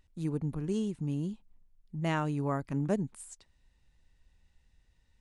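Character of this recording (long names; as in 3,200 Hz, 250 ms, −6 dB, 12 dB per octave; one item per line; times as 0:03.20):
background noise floor −70 dBFS
spectral slope −6.5 dB per octave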